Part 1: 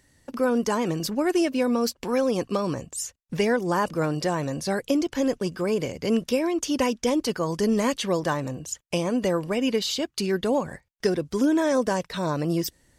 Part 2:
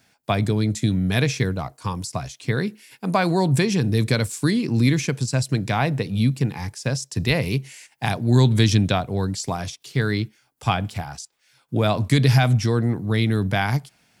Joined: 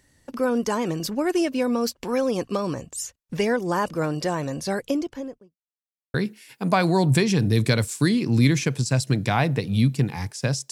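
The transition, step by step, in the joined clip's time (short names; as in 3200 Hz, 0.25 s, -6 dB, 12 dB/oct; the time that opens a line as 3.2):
part 1
4.73–5.57 studio fade out
5.57–6.14 mute
6.14 switch to part 2 from 2.56 s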